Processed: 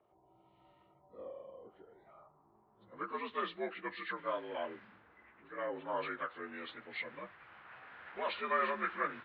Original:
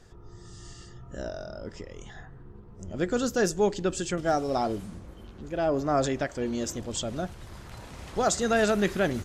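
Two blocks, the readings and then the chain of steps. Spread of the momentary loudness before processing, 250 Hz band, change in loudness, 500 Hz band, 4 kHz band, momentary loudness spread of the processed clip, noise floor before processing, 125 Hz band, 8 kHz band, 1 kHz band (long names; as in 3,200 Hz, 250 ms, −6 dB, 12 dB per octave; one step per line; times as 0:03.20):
21 LU, −19.0 dB, −11.5 dB, −14.0 dB, −12.0 dB, 19 LU, −48 dBFS, −26.5 dB, below −40 dB, −7.0 dB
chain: partials spread apart or drawn together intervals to 83%
low-pass filter 3,300 Hz 24 dB per octave
first difference
low-pass filter sweep 700 Hz → 1,600 Hz, 0:01.94–0:03.40
level +9 dB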